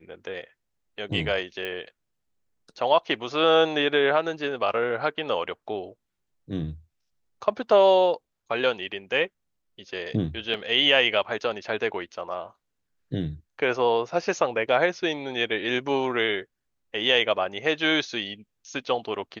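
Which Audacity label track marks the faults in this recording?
1.650000	1.650000	pop -19 dBFS
10.540000	10.540000	dropout 2 ms

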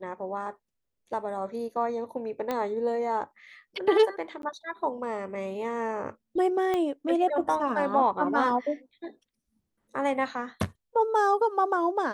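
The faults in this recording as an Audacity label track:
2.510000	2.510000	pop -16 dBFS
4.420000	4.430000	dropout 12 ms
6.740000	6.740000	pop -16 dBFS

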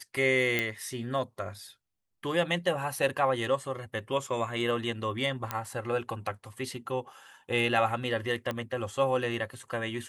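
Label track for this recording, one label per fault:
0.590000	0.590000	pop -13 dBFS
5.510000	5.510000	pop -14 dBFS
8.510000	8.510000	pop -19 dBFS

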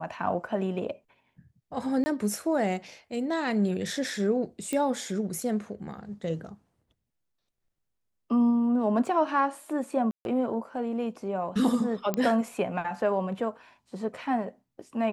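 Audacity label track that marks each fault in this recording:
2.040000	2.060000	dropout 20 ms
4.730000	4.730000	pop -17 dBFS
9.060000	9.060000	dropout 2.7 ms
10.110000	10.250000	dropout 141 ms
12.140000	12.140000	pop -14 dBFS

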